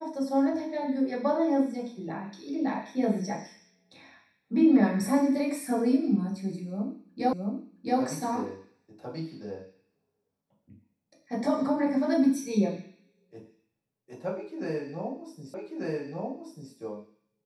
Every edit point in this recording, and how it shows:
7.33 s: repeat of the last 0.67 s
15.54 s: repeat of the last 1.19 s

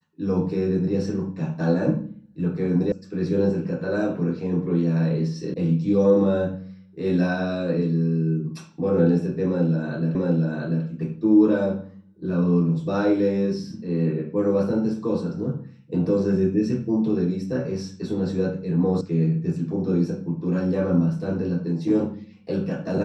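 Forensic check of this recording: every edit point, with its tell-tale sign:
2.92 s: sound stops dead
5.54 s: sound stops dead
10.15 s: repeat of the last 0.69 s
19.01 s: sound stops dead

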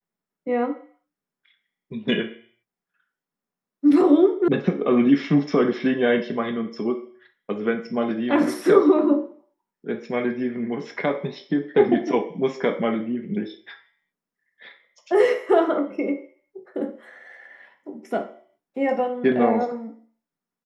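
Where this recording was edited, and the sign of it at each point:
4.48 s: sound stops dead

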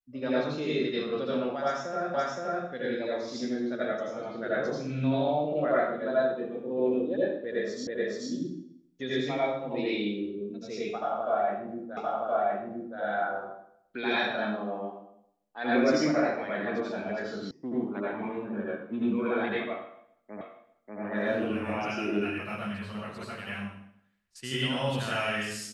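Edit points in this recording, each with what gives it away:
2.14 s: repeat of the last 0.52 s
7.87 s: repeat of the last 0.43 s
11.97 s: repeat of the last 1.02 s
17.51 s: sound stops dead
20.41 s: repeat of the last 0.59 s

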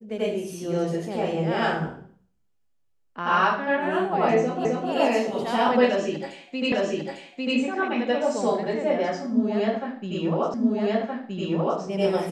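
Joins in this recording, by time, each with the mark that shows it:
4.65 s: repeat of the last 0.26 s
6.72 s: repeat of the last 0.85 s
10.54 s: repeat of the last 1.27 s

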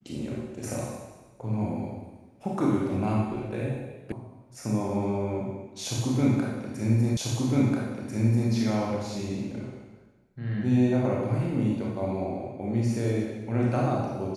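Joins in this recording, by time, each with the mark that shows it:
4.12 s: sound stops dead
7.17 s: repeat of the last 1.34 s

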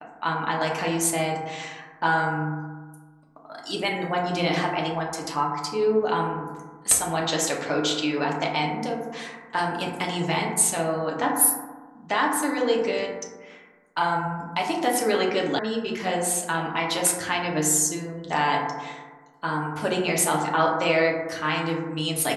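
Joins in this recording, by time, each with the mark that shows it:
15.59 s: sound stops dead

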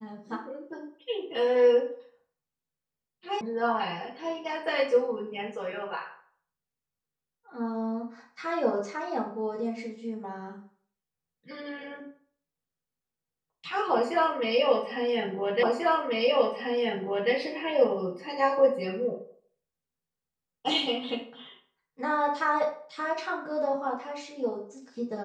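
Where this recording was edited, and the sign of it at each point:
3.41 s: sound stops dead
15.63 s: repeat of the last 1.69 s

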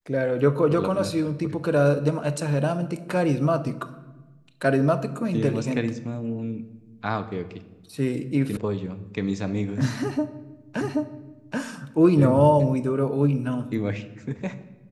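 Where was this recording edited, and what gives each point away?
8.57 s: sound stops dead
10.81 s: repeat of the last 0.78 s

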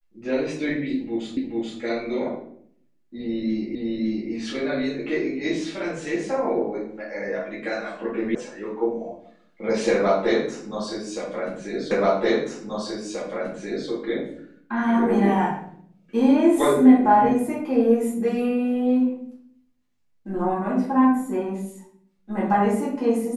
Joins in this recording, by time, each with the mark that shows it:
1.37 s: repeat of the last 0.43 s
3.75 s: repeat of the last 0.56 s
8.35 s: sound stops dead
11.91 s: repeat of the last 1.98 s

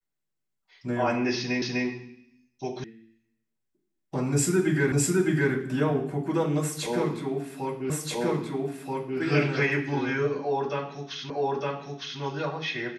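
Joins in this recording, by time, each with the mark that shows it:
1.62 s: repeat of the last 0.25 s
2.84 s: sound stops dead
4.92 s: repeat of the last 0.61 s
7.90 s: repeat of the last 1.28 s
11.30 s: repeat of the last 0.91 s

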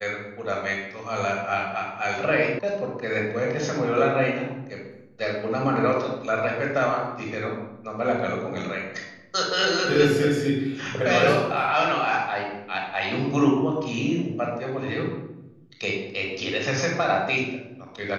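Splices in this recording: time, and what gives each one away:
2.59 s: sound stops dead

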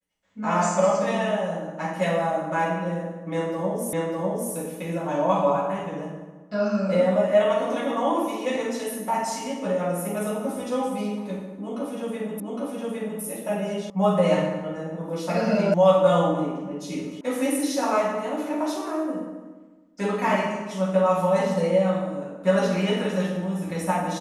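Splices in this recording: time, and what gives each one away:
3.93 s: repeat of the last 0.6 s
12.40 s: repeat of the last 0.81 s
13.90 s: sound stops dead
15.74 s: sound stops dead
17.21 s: sound stops dead

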